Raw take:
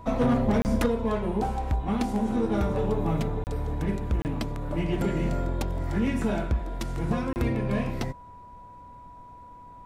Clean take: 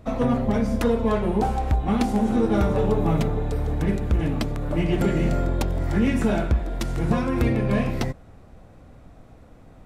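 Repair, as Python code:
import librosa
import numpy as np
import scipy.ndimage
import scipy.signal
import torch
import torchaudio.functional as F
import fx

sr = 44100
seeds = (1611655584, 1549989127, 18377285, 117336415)

y = fx.fix_declip(x, sr, threshold_db=-17.0)
y = fx.notch(y, sr, hz=980.0, q=30.0)
y = fx.fix_interpolate(y, sr, at_s=(0.62, 3.44, 4.22, 7.33), length_ms=29.0)
y = fx.gain(y, sr, db=fx.steps((0.0, 0.0), (0.86, 5.0)))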